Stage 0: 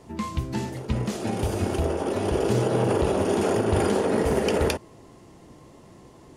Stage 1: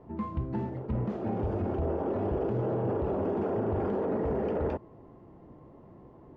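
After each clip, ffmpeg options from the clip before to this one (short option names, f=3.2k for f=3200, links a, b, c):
-af "alimiter=limit=-19.5dB:level=0:latency=1:release=13,lowpass=1.1k,volume=-2.5dB"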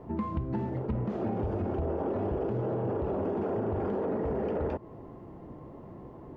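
-af "acompressor=threshold=-34dB:ratio=6,volume=6dB"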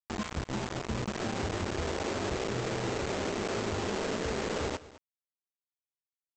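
-af "aresample=16000,acrusher=bits=4:mix=0:aa=0.000001,aresample=44100,aecho=1:1:210:0.126,volume=-4dB"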